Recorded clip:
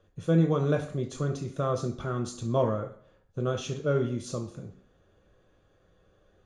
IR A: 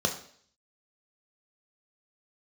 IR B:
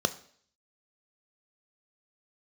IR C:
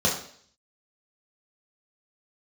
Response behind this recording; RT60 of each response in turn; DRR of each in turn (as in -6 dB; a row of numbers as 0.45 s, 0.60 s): A; 0.55 s, 0.55 s, 0.55 s; 3.0 dB, 11.0 dB, -4.5 dB